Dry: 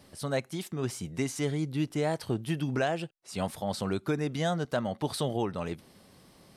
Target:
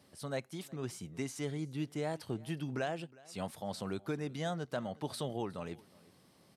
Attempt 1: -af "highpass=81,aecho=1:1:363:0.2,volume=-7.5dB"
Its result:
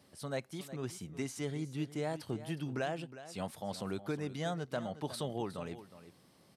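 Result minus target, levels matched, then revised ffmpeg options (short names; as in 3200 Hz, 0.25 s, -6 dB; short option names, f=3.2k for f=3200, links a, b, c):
echo-to-direct +9 dB
-af "highpass=81,aecho=1:1:363:0.0708,volume=-7.5dB"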